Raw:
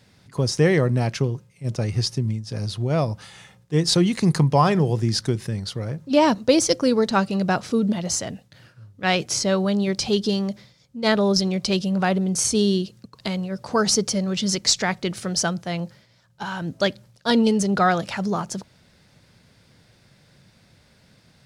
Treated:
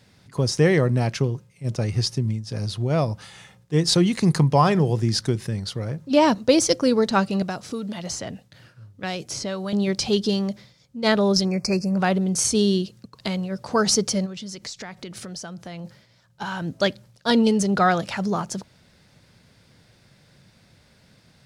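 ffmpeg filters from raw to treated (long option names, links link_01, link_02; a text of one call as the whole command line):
ffmpeg -i in.wav -filter_complex "[0:a]asettb=1/sr,asplit=3[link_01][link_02][link_03];[link_01]atrim=end=7.424[link_04];[link_02]atrim=start=7.42:end=9.73,asetpts=PTS-STARTPTS,afade=type=in:duration=0.004:curve=qsin,afade=type=out:start_time=2.306:duration=0.004:curve=qsin,acrossover=split=730|4900[link_05][link_06][link_07];[link_05]acompressor=threshold=-30dB:ratio=4[link_08];[link_06]acompressor=threshold=-34dB:ratio=4[link_09];[link_07]acompressor=threshold=-36dB:ratio=4[link_10];[link_08][link_09][link_10]amix=inputs=3:normalize=0[link_11];[link_03]atrim=start=9.726[link_12];[link_04][link_11]acrossfade=duration=0.004:curve1=hsin:curve2=qsin[link_13];[link_13][link_12]acrossfade=duration=0.004:curve1=qsin:curve2=hsin,asettb=1/sr,asplit=3[link_14][link_15][link_16];[link_14]atrim=end=11.454[link_17];[link_15]atrim=start=11.45:end=11.97,asetpts=PTS-STARTPTS,afade=type=in:duration=0.004:curve=qsin,afade=type=out:start_time=0.516:duration=0.004:curve=qsin,asuperstop=centerf=3400:order=20:qfactor=2[link_18];[link_16]atrim=start=11.966[link_19];[link_17][link_18]acrossfade=duration=0.004:curve1=hsin:curve2=qsin[link_20];[link_20][link_19]acrossfade=duration=0.004:curve1=qsin:curve2=hsin,asplit=3[link_21][link_22][link_23];[link_21]afade=type=out:start_time=14.25:duration=0.02[link_24];[link_22]acompressor=threshold=-33dB:ratio=6:attack=3.2:release=140:knee=1:detection=peak,afade=type=in:start_time=14.25:duration=0.02,afade=type=out:start_time=15.84:duration=0.02[link_25];[link_23]afade=type=in:start_time=15.84:duration=0.02[link_26];[link_24][link_25][link_26]amix=inputs=3:normalize=0" out.wav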